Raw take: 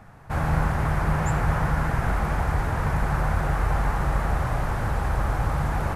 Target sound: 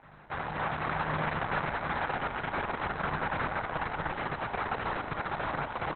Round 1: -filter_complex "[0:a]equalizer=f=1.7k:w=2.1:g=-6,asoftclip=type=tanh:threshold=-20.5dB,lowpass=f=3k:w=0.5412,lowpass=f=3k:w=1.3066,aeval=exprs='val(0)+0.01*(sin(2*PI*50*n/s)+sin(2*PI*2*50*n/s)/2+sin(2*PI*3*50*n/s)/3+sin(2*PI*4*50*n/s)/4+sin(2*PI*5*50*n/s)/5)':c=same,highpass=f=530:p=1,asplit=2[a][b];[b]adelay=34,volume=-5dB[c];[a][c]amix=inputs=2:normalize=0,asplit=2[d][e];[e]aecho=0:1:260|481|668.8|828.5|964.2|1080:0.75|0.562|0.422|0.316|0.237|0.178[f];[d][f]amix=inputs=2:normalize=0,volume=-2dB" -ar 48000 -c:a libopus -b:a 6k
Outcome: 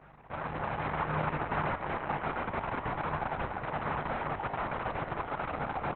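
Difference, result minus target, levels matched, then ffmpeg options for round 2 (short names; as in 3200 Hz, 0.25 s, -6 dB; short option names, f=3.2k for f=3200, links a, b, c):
4000 Hz band -4.0 dB; 2000 Hz band -2.5 dB
-filter_complex "[0:a]asoftclip=type=tanh:threshold=-20.5dB,aeval=exprs='val(0)+0.01*(sin(2*PI*50*n/s)+sin(2*PI*2*50*n/s)/2+sin(2*PI*3*50*n/s)/3+sin(2*PI*4*50*n/s)/4+sin(2*PI*5*50*n/s)/5)':c=same,highpass=f=530:p=1,asplit=2[a][b];[b]adelay=34,volume=-5dB[c];[a][c]amix=inputs=2:normalize=0,asplit=2[d][e];[e]aecho=0:1:260|481|668.8|828.5|964.2|1080:0.75|0.562|0.422|0.316|0.237|0.178[f];[d][f]amix=inputs=2:normalize=0,volume=-2dB" -ar 48000 -c:a libopus -b:a 6k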